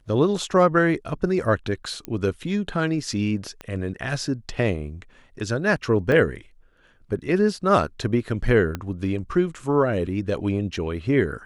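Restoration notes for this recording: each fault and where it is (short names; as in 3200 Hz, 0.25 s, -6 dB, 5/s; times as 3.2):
2.05 pop -16 dBFS
3.61 pop -21 dBFS
6.12 gap 2 ms
8.75 pop -14 dBFS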